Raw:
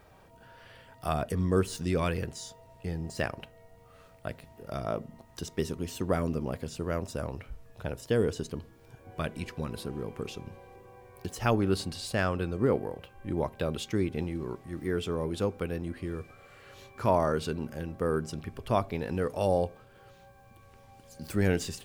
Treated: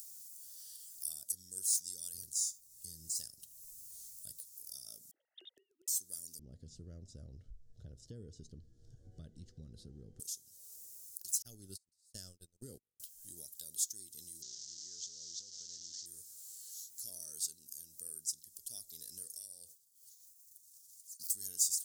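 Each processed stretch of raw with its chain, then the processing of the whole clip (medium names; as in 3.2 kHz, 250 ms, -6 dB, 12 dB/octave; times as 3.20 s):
2.14–4.37 s: bass shelf 290 Hz +11 dB + delay 77 ms -22 dB
5.11–5.88 s: formants replaced by sine waves + high-pass 250 Hz + inverted gate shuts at -31 dBFS, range -26 dB
6.39–10.20 s: low-pass 2.2 kHz + tilt EQ -4.5 dB/octave
11.42–13.00 s: gate -29 dBFS, range -44 dB + tilt EQ -3 dB/octave
14.42–16.06 s: one-bit delta coder 32 kbps, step -34.5 dBFS + compression, threshold -31 dBFS
19.37–21.30 s: expander -43 dBFS + compression, threshold -32 dBFS
whole clip: inverse Chebyshev high-pass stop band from 2.6 kHz, stop band 50 dB; upward compressor, threshold -53 dBFS; trim +12.5 dB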